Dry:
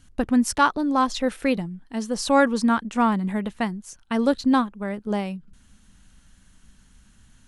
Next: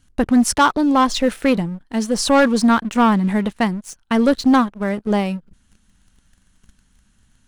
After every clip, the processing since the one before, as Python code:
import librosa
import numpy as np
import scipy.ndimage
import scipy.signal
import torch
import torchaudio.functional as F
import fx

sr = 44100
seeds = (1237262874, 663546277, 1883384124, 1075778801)

y = fx.leveller(x, sr, passes=2)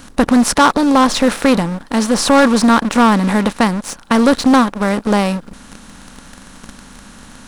y = fx.bin_compress(x, sr, power=0.6)
y = y * 10.0 ** (1.5 / 20.0)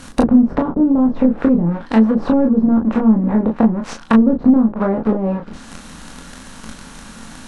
y = fx.env_lowpass_down(x, sr, base_hz=310.0, full_db=-9.5)
y = fx.room_early_taps(y, sr, ms=(23, 36), db=(-4.5, -6.0))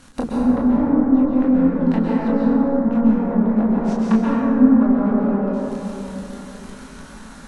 y = fx.rev_plate(x, sr, seeds[0], rt60_s=3.6, hf_ratio=0.3, predelay_ms=115, drr_db=-6.0)
y = y * 10.0 ** (-10.5 / 20.0)